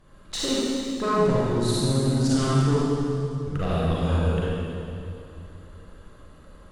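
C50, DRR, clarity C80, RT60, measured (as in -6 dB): -6.0 dB, -8.0 dB, -3.0 dB, 2.7 s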